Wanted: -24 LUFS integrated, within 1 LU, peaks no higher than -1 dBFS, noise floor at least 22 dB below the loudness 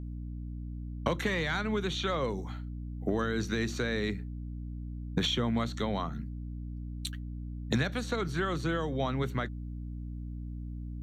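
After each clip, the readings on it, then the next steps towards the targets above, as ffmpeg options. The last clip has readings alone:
hum 60 Hz; harmonics up to 300 Hz; hum level -36 dBFS; loudness -34.0 LUFS; peak -14.0 dBFS; loudness target -24.0 LUFS
-> -af "bandreject=f=60:t=h:w=6,bandreject=f=120:t=h:w=6,bandreject=f=180:t=h:w=6,bandreject=f=240:t=h:w=6,bandreject=f=300:t=h:w=6"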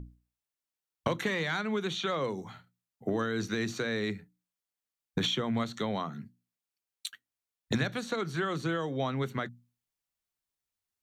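hum none; loudness -33.0 LUFS; peak -14.5 dBFS; loudness target -24.0 LUFS
-> -af "volume=9dB"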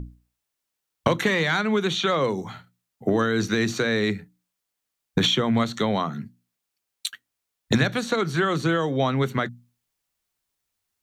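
loudness -24.0 LUFS; peak -5.5 dBFS; noise floor -82 dBFS

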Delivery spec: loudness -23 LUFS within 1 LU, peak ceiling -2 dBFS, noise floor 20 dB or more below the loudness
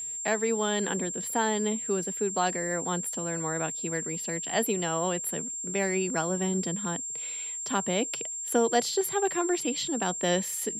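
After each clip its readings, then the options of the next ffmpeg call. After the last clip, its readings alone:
steady tone 7400 Hz; tone level -33 dBFS; loudness -28.5 LUFS; peak -11.5 dBFS; loudness target -23.0 LUFS
-> -af "bandreject=f=7.4k:w=30"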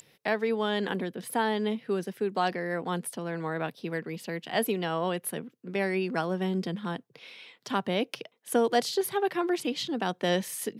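steady tone none; loudness -30.5 LUFS; peak -12.0 dBFS; loudness target -23.0 LUFS
-> -af "volume=7.5dB"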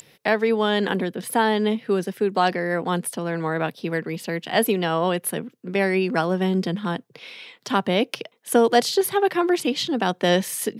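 loudness -23.0 LUFS; peak -4.5 dBFS; noise floor -59 dBFS

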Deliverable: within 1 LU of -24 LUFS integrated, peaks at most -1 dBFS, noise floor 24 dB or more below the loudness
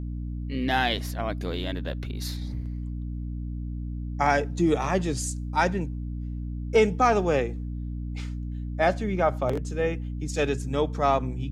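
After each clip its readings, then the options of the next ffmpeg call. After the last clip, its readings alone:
hum 60 Hz; harmonics up to 300 Hz; hum level -30 dBFS; loudness -27.5 LUFS; peak -8.5 dBFS; loudness target -24.0 LUFS
-> -af "bandreject=f=60:t=h:w=4,bandreject=f=120:t=h:w=4,bandreject=f=180:t=h:w=4,bandreject=f=240:t=h:w=4,bandreject=f=300:t=h:w=4"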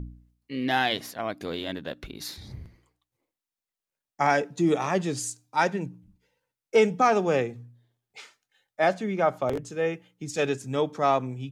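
hum none; loudness -26.5 LUFS; peak -9.0 dBFS; loudness target -24.0 LUFS
-> -af "volume=2.5dB"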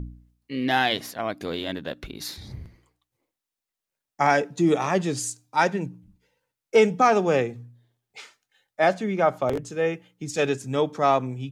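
loudness -24.0 LUFS; peak -6.5 dBFS; noise floor -88 dBFS

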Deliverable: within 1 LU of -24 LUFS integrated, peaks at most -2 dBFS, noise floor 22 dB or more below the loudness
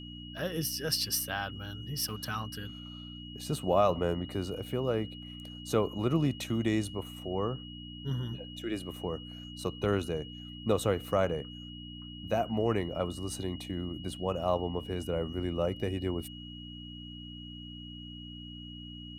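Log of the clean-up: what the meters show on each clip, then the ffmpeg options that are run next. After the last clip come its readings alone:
hum 60 Hz; harmonics up to 300 Hz; hum level -44 dBFS; steady tone 2900 Hz; tone level -47 dBFS; loudness -33.0 LUFS; peak -13.5 dBFS; loudness target -24.0 LUFS
-> -af "bandreject=f=60:t=h:w=4,bandreject=f=120:t=h:w=4,bandreject=f=180:t=h:w=4,bandreject=f=240:t=h:w=4,bandreject=f=300:t=h:w=4"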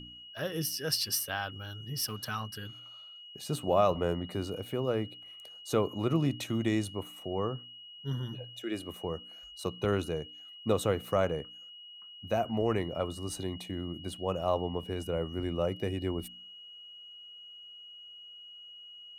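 hum none; steady tone 2900 Hz; tone level -47 dBFS
-> -af "bandreject=f=2.9k:w=30"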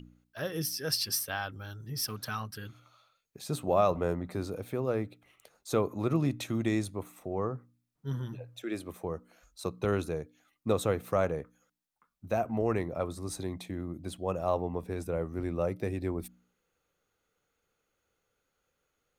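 steady tone none; loudness -33.0 LUFS; peak -13.5 dBFS; loudness target -24.0 LUFS
-> -af "volume=9dB"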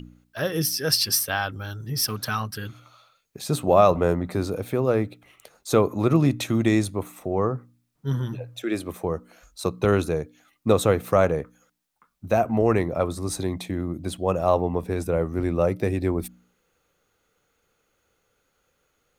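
loudness -24.0 LUFS; peak -4.5 dBFS; noise floor -72 dBFS

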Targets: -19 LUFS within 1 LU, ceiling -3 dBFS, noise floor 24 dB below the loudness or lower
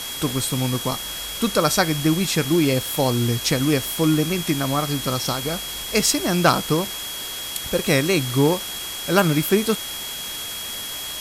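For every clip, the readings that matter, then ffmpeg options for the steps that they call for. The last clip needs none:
steady tone 3300 Hz; tone level -32 dBFS; noise floor -31 dBFS; noise floor target -46 dBFS; loudness -21.5 LUFS; peak -3.0 dBFS; loudness target -19.0 LUFS
-> -af "bandreject=f=3.3k:w=30"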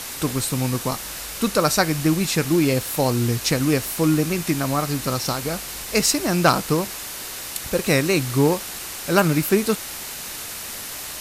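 steady tone none; noise floor -33 dBFS; noise floor target -46 dBFS
-> -af "afftdn=nr=13:nf=-33"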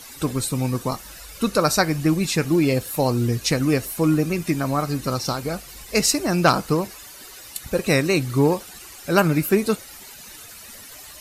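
noise floor -42 dBFS; noise floor target -46 dBFS
-> -af "afftdn=nr=6:nf=-42"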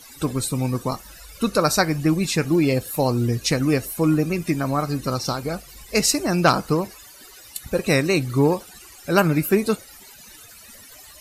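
noise floor -45 dBFS; noise floor target -46 dBFS
-> -af "afftdn=nr=6:nf=-45"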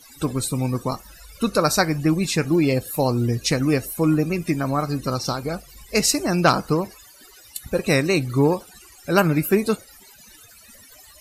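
noise floor -48 dBFS; loudness -21.5 LUFS; peak -3.5 dBFS; loudness target -19.0 LUFS
-> -af "volume=2.5dB,alimiter=limit=-3dB:level=0:latency=1"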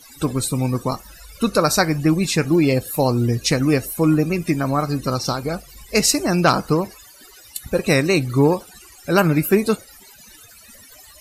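loudness -19.5 LUFS; peak -3.0 dBFS; noise floor -46 dBFS

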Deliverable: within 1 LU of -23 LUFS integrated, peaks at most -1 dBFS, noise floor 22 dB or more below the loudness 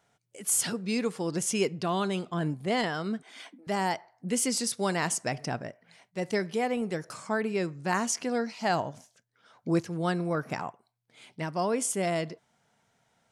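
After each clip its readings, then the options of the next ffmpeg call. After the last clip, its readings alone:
loudness -30.0 LUFS; peak -14.0 dBFS; loudness target -23.0 LUFS
-> -af "volume=7dB"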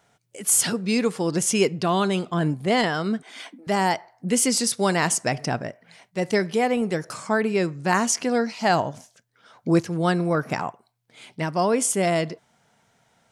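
loudness -23.0 LUFS; peak -7.0 dBFS; noise floor -66 dBFS

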